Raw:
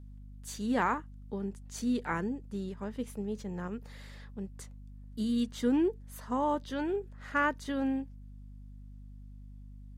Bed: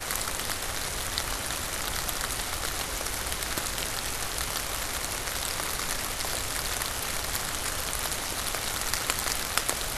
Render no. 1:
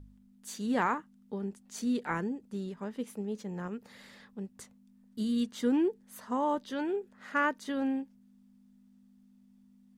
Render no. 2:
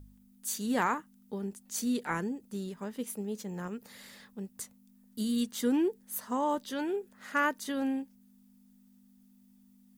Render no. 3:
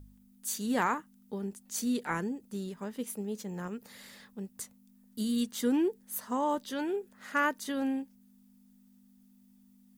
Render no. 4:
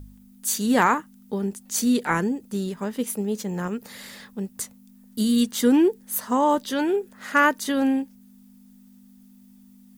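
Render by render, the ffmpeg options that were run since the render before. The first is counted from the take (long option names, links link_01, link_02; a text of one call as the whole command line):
ffmpeg -i in.wav -af "bandreject=frequency=50:width_type=h:width=4,bandreject=frequency=100:width_type=h:width=4,bandreject=frequency=150:width_type=h:width=4" out.wav
ffmpeg -i in.wav -af "aemphasis=mode=production:type=50fm" out.wav
ffmpeg -i in.wav -af anull out.wav
ffmpeg -i in.wav -af "volume=10dB" out.wav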